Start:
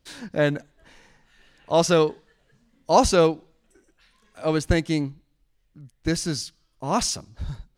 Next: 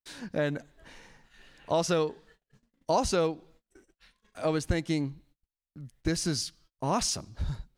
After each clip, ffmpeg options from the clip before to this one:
-af "acompressor=threshold=-27dB:ratio=3,agate=range=-33dB:threshold=-59dB:ratio=16:detection=peak,dynaudnorm=f=140:g=5:m=5.5dB,volume=-4.5dB"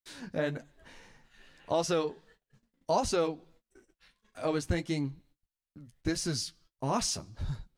-af "flanger=delay=7.8:depth=4.1:regen=-36:speed=1.6:shape=sinusoidal,volume=1.5dB"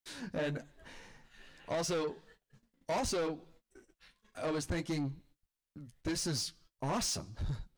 -af "asoftclip=type=tanh:threshold=-31dB,volume=1dB"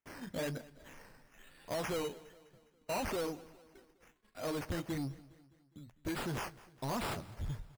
-af "acrusher=samples=10:mix=1:aa=0.000001:lfo=1:lforange=6:lforate=1.1,aecho=1:1:205|410|615|820:0.0944|0.0491|0.0255|0.0133,volume=-2.5dB"

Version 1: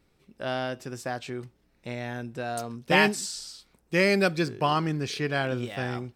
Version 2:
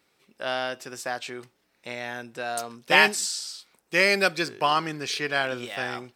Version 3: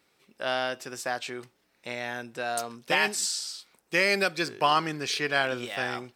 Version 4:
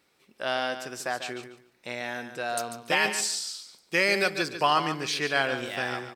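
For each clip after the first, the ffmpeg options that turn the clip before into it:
-af "highpass=f=860:p=1,volume=5.5dB"
-af "alimiter=limit=-10.5dB:level=0:latency=1:release=263"
-af "aecho=1:1:144|288|432:0.316|0.0632|0.0126"

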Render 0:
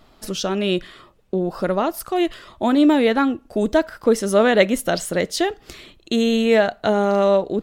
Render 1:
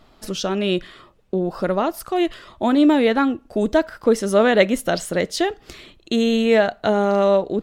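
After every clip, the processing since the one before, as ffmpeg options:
-af "highshelf=f=8.6k:g=-5"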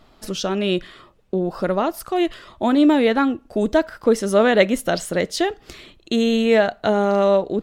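-af anull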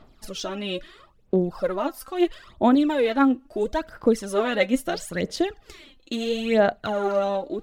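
-af "aphaser=in_gain=1:out_gain=1:delay=3.9:decay=0.67:speed=0.75:type=sinusoidal,volume=-8dB"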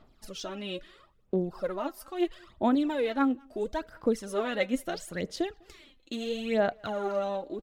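-filter_complex "[0:a]asplit=2[a][b];[b]adelay=200,highpass=300,lowpass=3.4k,asoftclip=type=hard:threshold=-15.5dB,volume=-28dB[c];[a][c]amix=inputs=2:normalize=0,volume=-7dB"

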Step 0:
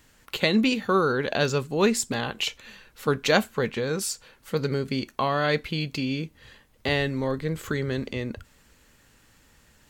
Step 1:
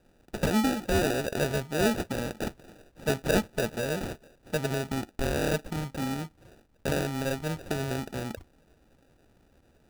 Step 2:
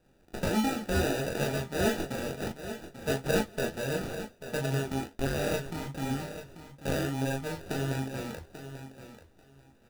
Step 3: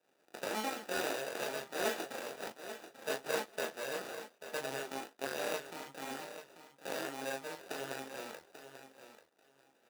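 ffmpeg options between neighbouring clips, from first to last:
-af "acrusher=samples=41:mix=1:aa=0.000001,volume=-3.5dB"
-filter_complex "[0:a]asplit=2[a][b];[b]aecho=0:1:22|37:0.562|0.531[c];[a][c]amix=inputs=2:normalize=0,flanger=delay=6.2:depth=6.3:regen=62:speed=1.5:shape=sinusoidal,asplit=2[d][e];[e]aecho=0:1:839|1678:0.266|0.0479[f];[d][f]amix=inputs=2:normalize=0"
-af "aeval=exprs='if(lt(val(0),0),0.251*val(0),val(0))':c=same,highpass=450,volume=-1dB"

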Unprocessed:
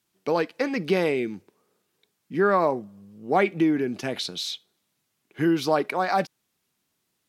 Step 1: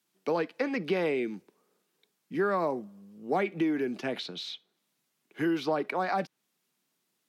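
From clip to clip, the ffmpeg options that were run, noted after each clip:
-filter_complex "[0:a]highpass=f=150:w=0.5412,highpass=f=150:w=1.3066,acrossover=split=340|3900[a][b][c];[a]acompressor=threshold=-31dB:ratio=4[d];[b]acompressor=threshold=-24dB:ratio=4[e];[c]acompressor=threshold=-54dB:ratio=4[f];[d][e][f]amix=inputs=3:normalize=0,volume=-2.5dB"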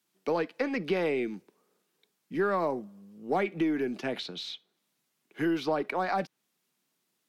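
-af "aeval=exprs='0.141*(cos(1*acos(clip(val(0)/0.141,-1,1)))-cos(1*PI/2))+0.00178*(cos(6*acos(clip(val(0)/0.141,-1,1)))-cos(6*PI/2))':c=same"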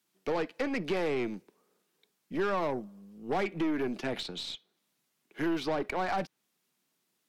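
-af "aeval=exprs='0.15*(cos(1*acos(clip(val(0)/0.15,-1,1)))-cos(1*PI/2))+0.0335*(cos(2*acos(clip(val(0)/0.15,-1,1)))-cos(2*PI/2))+0.0168*(cos(4*acos(clip(val(0)/0.15,-1,1)))-cos(4*PI/2))+0.0188*(cos(6*acos(clip(val(0)/0.15,-1,1)))-cos(6*PI/2))':c=same,asoftclip=type=tanh:threshold=-23dB"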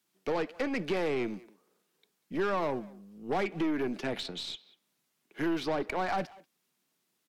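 -filter_complex "[0:a]asplit=2[a][b];[b]adelay=190,highpass=300,lowpass=3.4k,asoftclip=type=hard:threshold=-32.5dB,volume=-18dB[c];[a][c]amix=inputs=2:normalize=0"

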